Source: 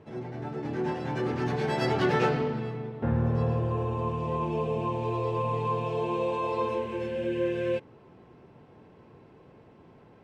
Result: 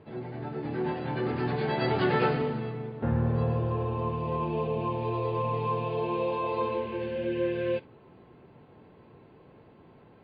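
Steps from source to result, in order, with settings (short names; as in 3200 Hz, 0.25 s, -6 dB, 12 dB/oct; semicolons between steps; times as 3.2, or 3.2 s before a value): MP3 24 kbps 11025 Hz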